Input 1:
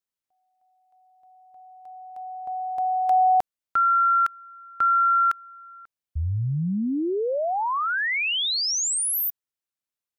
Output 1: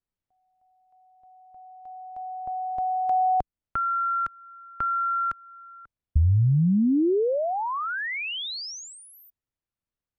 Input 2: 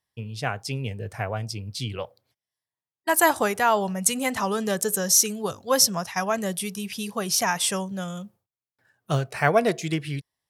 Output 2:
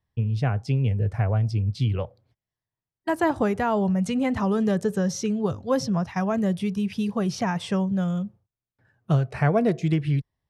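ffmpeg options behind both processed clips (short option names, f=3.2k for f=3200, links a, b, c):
-filter_complex "[0:a]aemphasis=mode=reproduction:type=riaa,acrossover=split=490|6200[a][b][c];[a]acompressor=threshold=-20dB:ratio=3[d];[b]acompressor=threshold=-34dB:ratio=1.5[e];[c]acompressor=threshold=-54dB:ratio=3[f];[d][e][f]amix=inputs=3:normalize=0"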